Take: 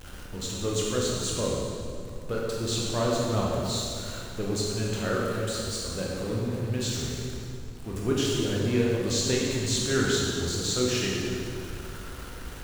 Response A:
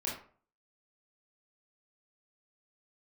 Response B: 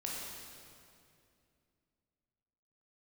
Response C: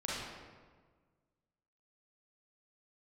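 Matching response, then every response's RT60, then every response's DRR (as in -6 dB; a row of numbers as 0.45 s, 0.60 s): B; 0.45 s, 2.5 s, 1.5 s; -5.5 dB, -4.0 dB, -7.5 dB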